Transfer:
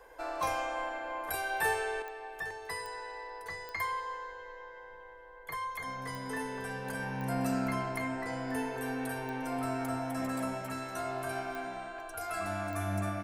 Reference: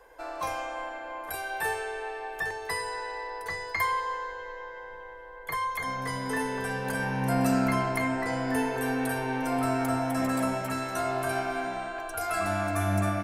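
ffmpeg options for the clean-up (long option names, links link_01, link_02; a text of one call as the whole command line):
ffmpeg -i in.wav -af "adeclick=threshold=4,asetnsamples=nb_out_samples=441:pad=0,asendcmd='2.02 volume volume 7dB',volume=0dB" out.wav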